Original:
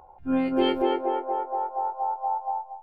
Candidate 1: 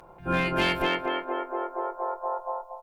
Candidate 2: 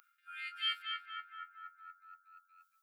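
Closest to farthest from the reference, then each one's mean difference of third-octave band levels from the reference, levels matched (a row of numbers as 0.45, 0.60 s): 1, 2; 7.5, 15.5 dB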